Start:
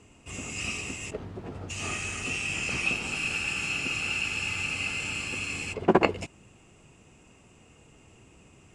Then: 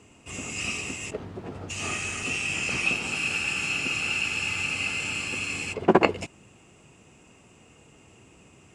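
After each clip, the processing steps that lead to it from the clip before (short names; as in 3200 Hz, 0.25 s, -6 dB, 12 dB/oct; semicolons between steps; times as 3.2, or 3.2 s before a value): HPF 95 Hz 6 dB/oct; gain +2.5 dB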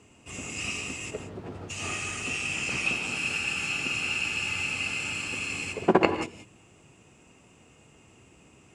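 non-linear reverb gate 0.2 s rising, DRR 8.5 dB; gain -2.5 dB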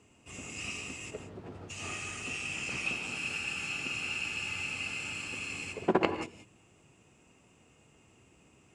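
Doppler distortion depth 0.11 ms; gain -6 dB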